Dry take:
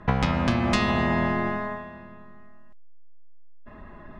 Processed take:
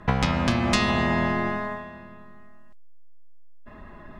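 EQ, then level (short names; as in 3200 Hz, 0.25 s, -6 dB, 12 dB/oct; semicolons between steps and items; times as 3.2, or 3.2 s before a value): high shelf 4200 Hz +8.5 dB; 0.0 dB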